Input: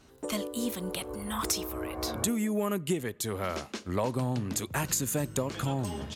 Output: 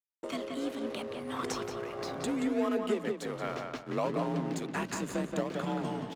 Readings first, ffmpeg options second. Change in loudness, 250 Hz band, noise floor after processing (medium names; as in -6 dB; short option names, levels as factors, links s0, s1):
-2.5 dB, -1.0 dB, -48 dBFS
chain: -filter_complex "[0:a]asplit=2[s0][s1];[s1]acrusher=samples=39:mix=1:aa=0.000001:lfo=1:lforange=39:lforate=0.65,volume=0.398[s2];[s0][s2]amix=inputs=2:normalize=0,afreqshift=43,bass=f=250:g=-5,treble=f=4000:g=-8,agate=range=0.0224:threshold=0.00562:ratio=3:detection=peak,lowpass=7700,equalizer=f=85:t=o:w=0.59:g=-10,aeval=exprs='sgn(val(0))*max(abs(val(0))-0.00251,0)':c=same,asplit=2[s3][s4];[s4]adelay=177,lowpass=f=3300:p=1,volume=0.631,asplit=2[s5][s6];[s6]adelay=177,lowpass=f=3300:p=1,volume=0.31,asplit=2[s7][s8];[s8]adelay=177,lowpass=f=3300:p=1,volume=0.31,asplit=2[s9][s10];[s10]adelay=177,lowpass=f=3300:p=1,volume=0.31[s11];[s5][s7][s9][s11]amix=inputs=4:normalize=0[s12];[s3][s12]amix=inputs=2:normalize=0,volume=0.75"